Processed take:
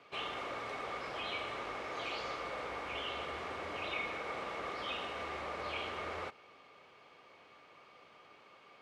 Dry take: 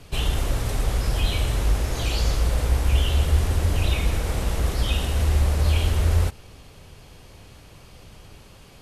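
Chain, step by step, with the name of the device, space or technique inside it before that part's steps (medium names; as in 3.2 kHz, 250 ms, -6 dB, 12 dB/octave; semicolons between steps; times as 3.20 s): tin-can telephone (band-pass 440–2800 Hz; small resonant body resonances 1.2/2.2 kHz, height 12 dB, ringing for 45 ms); trim -7 dB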